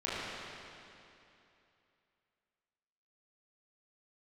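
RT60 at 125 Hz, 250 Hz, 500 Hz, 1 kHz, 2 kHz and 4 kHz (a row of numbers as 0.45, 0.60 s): 2.8, 2.9, 2.8, 2.8, 2.7, 2.5 s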